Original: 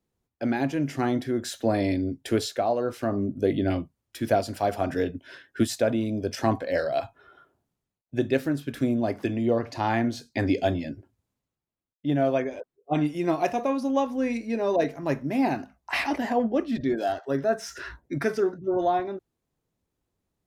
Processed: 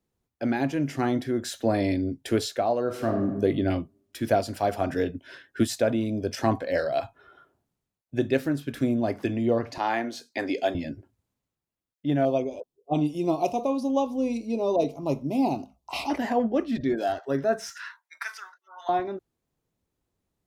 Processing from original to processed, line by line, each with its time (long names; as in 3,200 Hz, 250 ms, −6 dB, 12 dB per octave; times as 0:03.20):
0:02.82–0:03.37: thrown reverb, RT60 0.99 s, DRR 3.5 dB
0:09.78–0:10.75: high-pass filter 360 Hz
0:12.25–0:16.10: Butterworth band-reject 1,700 Hz, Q 1
0:17.70–0:18.89: elliptic high-pass filter 960 Hz, stop band 80 dB